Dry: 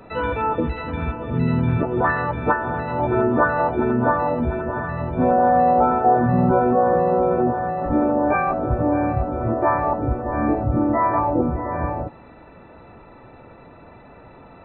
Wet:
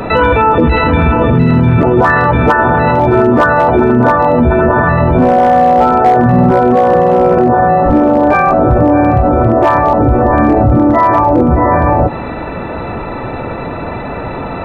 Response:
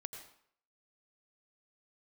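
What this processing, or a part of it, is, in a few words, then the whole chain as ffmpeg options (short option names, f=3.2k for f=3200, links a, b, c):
loud club master: -af "acompressor=threshold=-22dB:ratio=2,asoftclip=type=hard:threshold=-15.5dB,alimiter=level_in=25dB:limit=-1dB:release=50:level=0:latency=1,volume=-1dB"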